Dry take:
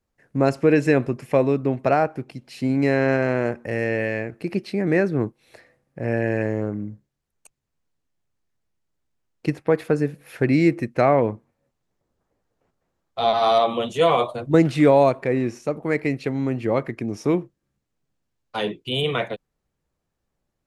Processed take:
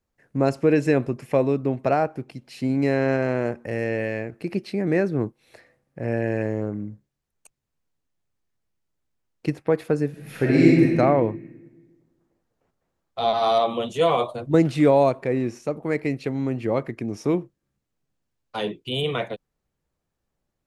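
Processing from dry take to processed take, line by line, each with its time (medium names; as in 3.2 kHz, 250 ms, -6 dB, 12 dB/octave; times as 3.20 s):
10.09–10.96 s: reverb throw, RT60 1.5 s, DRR -4.5 dB
whole clip: dynamic bell 1.8 kHz, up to -3 dB, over -37 dBFS, Q 1; trim -1.5 dB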